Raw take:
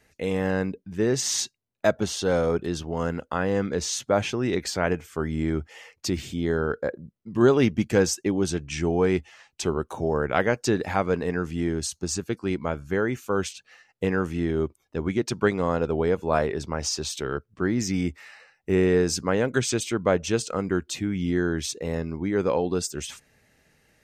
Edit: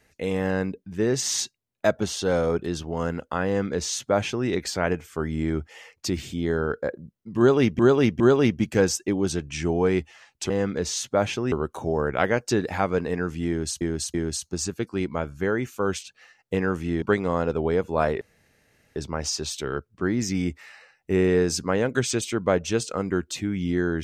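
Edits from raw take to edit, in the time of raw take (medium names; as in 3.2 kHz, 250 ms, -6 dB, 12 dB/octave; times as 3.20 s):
3.46–4.48 s: copy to 9.68 s
7.38–7.79 s: loop, 3 plays
11.64–11.97 s: loop, 3 plays
14.52–15.36 s: delete
16.55 s: insert room tone 0.75 s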